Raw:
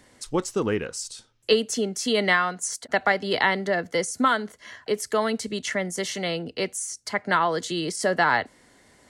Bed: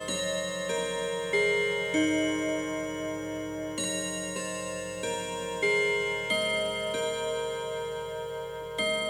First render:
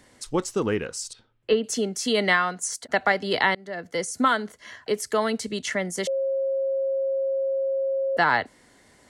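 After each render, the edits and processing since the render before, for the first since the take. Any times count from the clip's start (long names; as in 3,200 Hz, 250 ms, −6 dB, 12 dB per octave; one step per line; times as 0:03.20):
0:01.13–0:01.64: high-frequency loss of the air 380 metres
0:03.55–0:04.17: fade in, from −23.5 dB
0:06.07–0:08.17: beep over 540 Hz −22 dBFS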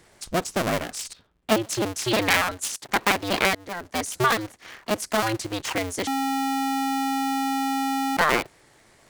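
sub-harmonics by changed cycles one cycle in 2, inverted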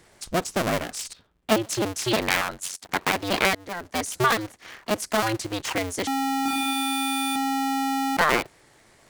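0:02.16–0:03.13: ring modulation 46 Hz
0:06.43–0:07.36: flutter between parallel walls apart 4.3 metres, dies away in 1.3 s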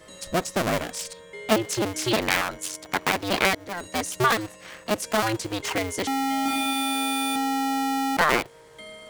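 mix in bed −14 dB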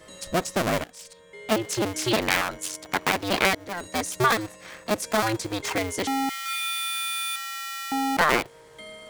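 0:00.84–0:01.83: fade in, from −16.5 dB
0:03.84–0:05.79: notch filter 2,900 Hz
0:06.29–0:07.92: Butterworth high-pass 1,200 Hz 48 dB per octave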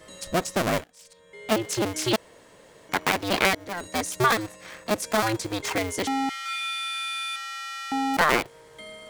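0:00.81–0:01.47: fade in, from −14 dB
0:02.16–0:02.89: fill with room tone
0:06.08–0:08.14: high-frequency loss of the air 60 metres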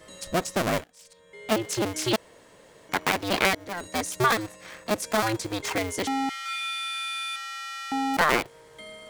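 level −1 dB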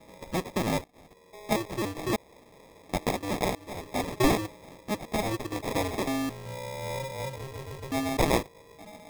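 rotating-speaker cabinet horn 0.65 Hz, later 8 Hz, at 0:06.71
decimation without filtering 30×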